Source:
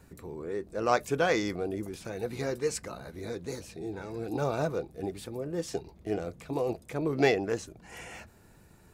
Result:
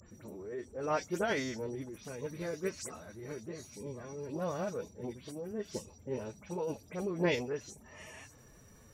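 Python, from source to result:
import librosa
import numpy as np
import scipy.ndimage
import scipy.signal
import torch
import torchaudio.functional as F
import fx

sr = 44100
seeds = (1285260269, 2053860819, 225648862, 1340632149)

y = fx.spec_delay(x, sr, highs='late', ms=110)
y = y + 10.0 ** (-51.0 / 20.0) * np.sin(2.0 * np.pi * 5800.0 * np.arange(len(y)) / sr)
y = fx.pitch_keep_formants(y, sr, semitones=4.0)
y = y * librosa.db_to_amplitude(-5.5)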